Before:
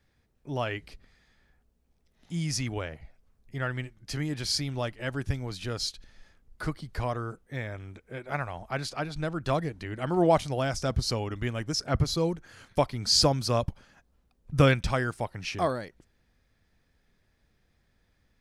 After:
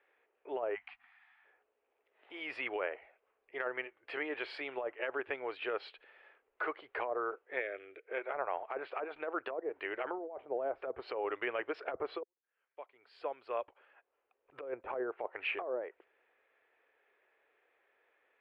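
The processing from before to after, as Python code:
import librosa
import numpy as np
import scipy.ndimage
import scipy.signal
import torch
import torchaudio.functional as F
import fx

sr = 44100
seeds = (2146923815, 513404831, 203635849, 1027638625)

y = fx.spec_erase(x, sr, start_s=0.75, length_s=0.69, low_hz=260.0, high_hz=680.0)
y = fx.fixed_phaser(y, sr, hz=390.0, stages=4, at=(7.59, 8.06), fade=0.02)
y = fx.edit(y, sr, fx.fade_in_span(start_s=12.23, length_s=2.63, curve='qua'), tone=tone)
y = scipy.signal.sosfilt(scipy.signal.ellip(3, 1.0, 40, [410.0, 2700.0], 'bandpass', fs=sr, output='sos'), y)
y = fx.env_lowpass_down(y, sr, base_hz=560.0, full_db=-27.5)
y = fx.over_compress(y, sr, threshold_db=-37.0, ratio=-1.0)
y = y * 10.0 ** (1.0 / 20.0)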